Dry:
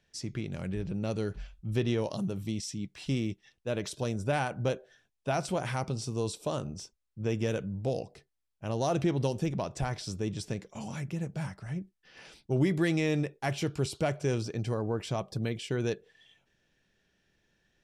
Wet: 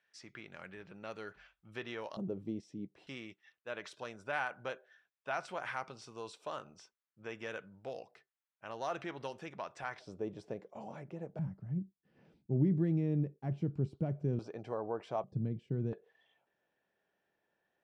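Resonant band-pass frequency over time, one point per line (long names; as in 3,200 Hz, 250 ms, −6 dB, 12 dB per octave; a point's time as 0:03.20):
resonant band-pass, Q 1.3
1,500 Hz
from 0:02.17 410 Hz
from 0:03.07 1,500 Hz
from 0:09.99 600 Hz
from 0:11.39 180 Hz
from 0:14.39 760 Hz
from 0:15.24 160 Hz
from 0:15.93 790 Hz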